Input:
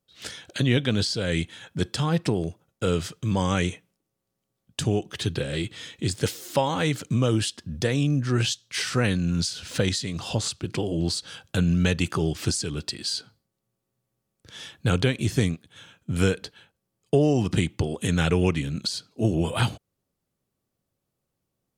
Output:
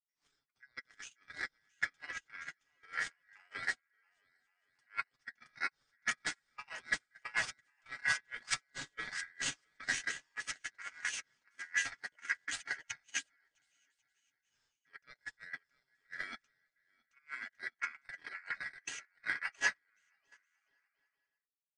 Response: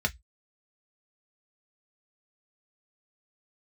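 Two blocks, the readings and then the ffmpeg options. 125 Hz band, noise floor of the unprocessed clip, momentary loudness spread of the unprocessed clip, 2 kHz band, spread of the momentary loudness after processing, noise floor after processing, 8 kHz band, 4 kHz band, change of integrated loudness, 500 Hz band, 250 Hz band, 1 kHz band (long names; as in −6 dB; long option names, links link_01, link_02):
below −40 dB, −81 dBFS, 8 LU, −2.5 dB, 15 LU, below −85 dBFS, −10.5 dB, −15.5 dB, −14.0 dB, −32.5 dB, −36.5 dB, −14.0 dB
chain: -af "aresample=16000,aresample=44100,areverse,acompressor=threshold=-29dB:ratio=16,areverse,aeval=exprs='val(0)*sin(2*PI*1800*n/s)':channel_layout=same,flanger=delay=6.2:depth=2:regen=34:speed=0.65:shape=triangular,aecho=1:1:670|1106|1389|1573|1692:0.631|0.398|0.251|0.158|0.1,agate=range=-44dB:threshold=-34dB:ratio=16:detection=peak,volume=11dB"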